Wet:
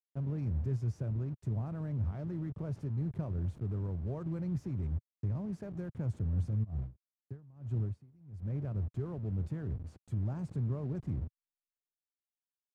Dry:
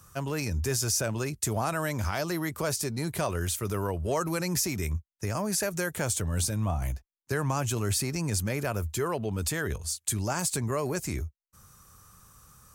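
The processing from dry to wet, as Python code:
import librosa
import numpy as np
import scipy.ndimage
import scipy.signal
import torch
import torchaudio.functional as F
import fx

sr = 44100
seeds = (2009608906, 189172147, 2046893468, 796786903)

y = fx.delta_hold(x, sr, step_db=-31.5)
y = fx.rider(y, sr, range_db=10, speed_s=2.0)
y = fx.bandpass_q(y, sr, hz=120.0, q=1.4)
y = fx.tremolo_db(y, sr, hz=fx.line((6.63, 2.8), (8.63, 1.0)), depth_db=27, at=(6.63, 8.63), fade=0.02)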